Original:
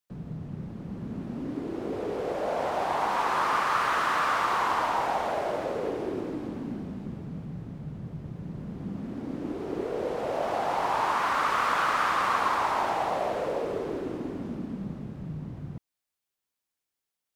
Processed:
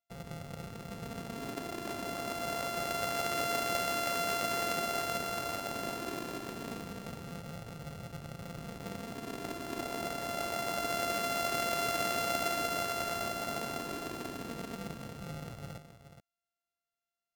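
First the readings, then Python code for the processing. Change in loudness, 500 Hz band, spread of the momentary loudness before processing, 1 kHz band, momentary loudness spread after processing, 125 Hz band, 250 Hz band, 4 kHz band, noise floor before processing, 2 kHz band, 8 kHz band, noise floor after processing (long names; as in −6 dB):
−6.0 dB, −6.0 dB, 14 LU, −9.5 dB, 13 LU, −6.0 dB, −7.0 dB, +1.0 dB, below −85 dBFS, −6.5 dB, +6.5 dB, below −85 dBFS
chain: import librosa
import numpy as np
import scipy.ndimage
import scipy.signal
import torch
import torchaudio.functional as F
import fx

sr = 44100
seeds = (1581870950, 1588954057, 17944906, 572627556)

y = np.r_[np.sort(x[:len(x) // 64 * 64].reshape(-1, 64), axis=1).ravel(), x[len(x) // 64 * 64:]]
y = y + 10.0 ** (-10.5 / 20.0) * np.pad(y, (int(423 * sr / 1000.0), 0))[:len(y)]
y = y * 10.0 ** (-6.5 / 20.0)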